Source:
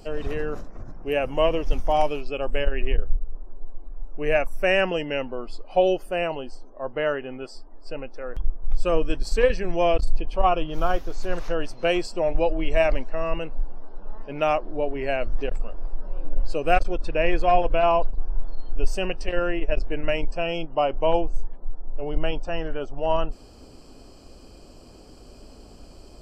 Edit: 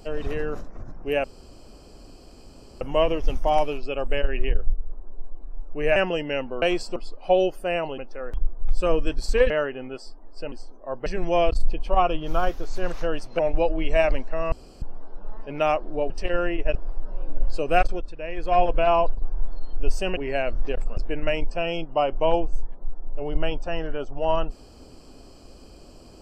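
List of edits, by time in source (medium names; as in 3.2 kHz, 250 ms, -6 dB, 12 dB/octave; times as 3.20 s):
1.24 s: insert room tone 1.57 s
4.39–4.77 s: delete
6.45–6.99 s: swap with 8.01–9.53 s
11.86–12.20 s: move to 5.43 s
13.33–13.63 s: room tone
14.91–15.71 s: swap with 19.13–19.78 s
16.83–17.56 s: dip -11 dB, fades 0.25 s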